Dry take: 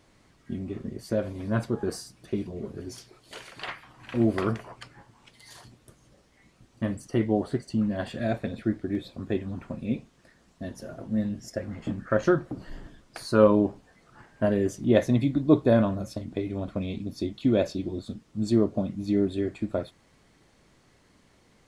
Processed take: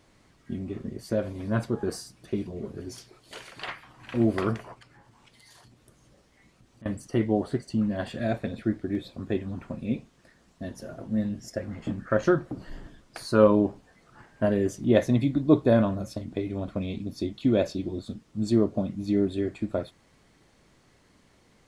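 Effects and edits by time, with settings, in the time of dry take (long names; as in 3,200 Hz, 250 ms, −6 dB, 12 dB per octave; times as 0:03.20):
0:04.74–0:06.86: downward compressor 2.5 to 1, threshold −53 dBFS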